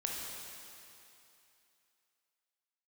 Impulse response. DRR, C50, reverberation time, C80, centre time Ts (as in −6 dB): −2.0 dB, −0.5 dB, 2.8 s, 1.0 dB, 139 ms